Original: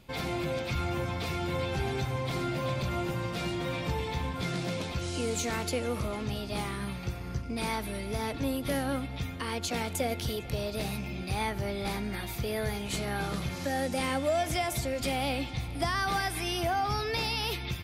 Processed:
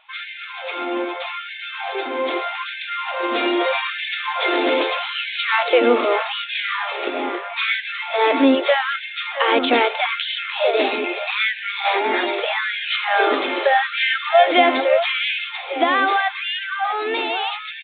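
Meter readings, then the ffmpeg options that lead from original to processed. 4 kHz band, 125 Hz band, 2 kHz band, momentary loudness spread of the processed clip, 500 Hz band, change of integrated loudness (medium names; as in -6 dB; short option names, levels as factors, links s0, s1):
+13.0 dB, under -25 dB, +16.0 dB, 10 LU, +13.0 dB, +12.5 dB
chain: -filter_complex "[0:a]dynaudnorm=f=490:g=13:m=2.82,asplit=2[s0][s1];[s1]adelay=641.4,volume=0.398,highshelf=f=4000:g=-14.4[s2];[s0][s2]amix=inputs=2:normalize=0,aresample=8000,aresample=44100,afftfilt=real='re*gte(b*sr/1024,220*pow(1500/220,0.5+0.5*sin(2*PI*0.8*pts/sr)))':imag='im*gte(b*sr/1024,220*pow(1500/220,0.5+0.5*sin(2*PI*0.8*pts/sr)))':win_size=1024:overlap=0.75,volume=2.82"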